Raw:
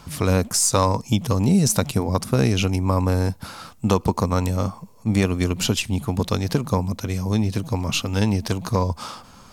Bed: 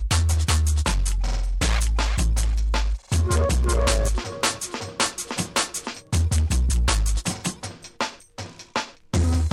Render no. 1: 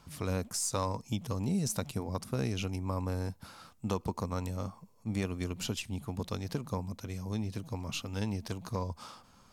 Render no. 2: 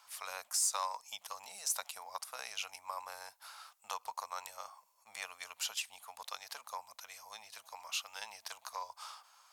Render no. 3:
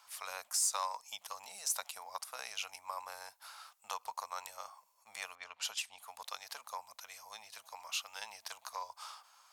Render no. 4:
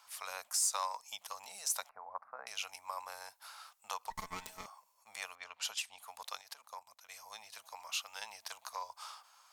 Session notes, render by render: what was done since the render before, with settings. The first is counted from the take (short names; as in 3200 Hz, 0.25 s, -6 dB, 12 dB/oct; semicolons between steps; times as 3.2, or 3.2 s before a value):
gain -14 dB
inverse Chebyshev high-pass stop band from 370 Hz, stop band 40 dB; high shelf 8200 Hz +4.5 dB
5.35–5.98 low-pass opened by the level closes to 2000 Hz, open at -33.5 dBFS
1.89–2.47 inverse Chebyshev low-pass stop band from 3000 Hz; 4.1–4.66 minimum comb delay 4.6 ms; 6.41–7.09 level quantiser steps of 15 dB